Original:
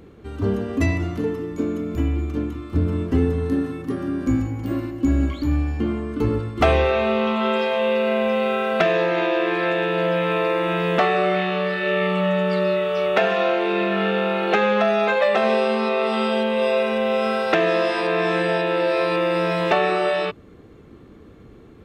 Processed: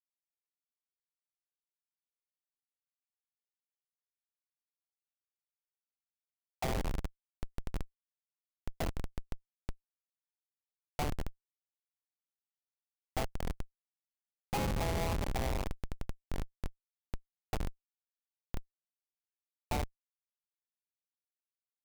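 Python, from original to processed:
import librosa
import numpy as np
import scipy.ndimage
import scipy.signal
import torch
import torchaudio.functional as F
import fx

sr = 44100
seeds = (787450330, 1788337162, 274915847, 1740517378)

y = fx.double_bandpass(x, sr, hz=1600.0, octaves=1.9)
y = fx.cheby_harmonics(y, sr, harmonics=(3, 4, 7), levels_db=(-20, -45, -15), full_scale_db=-14.0)
y = fx.schmitt(y, sr, flips_db=-31.5)
y = y * 10.0 ** (9.5 / 20.0)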